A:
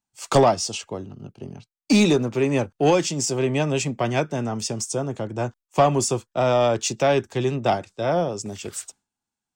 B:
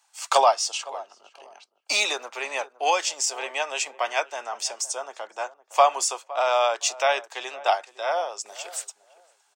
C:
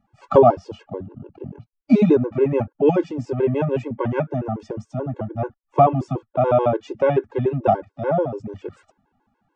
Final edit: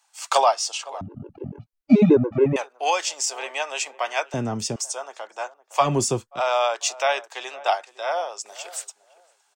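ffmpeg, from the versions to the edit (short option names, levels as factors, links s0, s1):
-filter_complex "[0:a]asplit=2[s0][s1];[1:a]asplit=4[s2][s3][s4][s5];[s2]atrim=end=1.012[s6];[2:a]atrim=start=1.008:end=2.562[s7];[s3]atrim=start=2.558:end=4.342[s8];[s0]atrim=start=4.338:end=4.762[s9];[s4]atrim=start=4.758:end=5.9[s10];[s1]atrim=start=5.8:end=6.41[s11];[s5]atrim=start=6.31[s12];[s6][s7]acrossfade=d=0.004:c1=hsin:c2=hsin[s13];[s13][s8]acrossfade=d=0.004:c1=hsin:c2=hsin[s14];[s14][s9]acrossfade=d=0.004:c1=hsin:c2=hsin[s15];[s15][s10]acrossfade=d=0.004:c1=hsin:c2=hsin[s16];[s16][s11]acrossfade=d=0.1:c1=tri:c2=tri[s17];[s17][s12]acrossfade=d=0.1:c1=tri:c2=tri"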